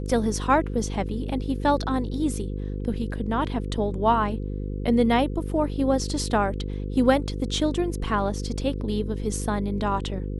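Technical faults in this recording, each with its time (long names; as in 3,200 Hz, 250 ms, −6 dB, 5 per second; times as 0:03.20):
mains buzz 50 Hz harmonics 10 −30 dBFS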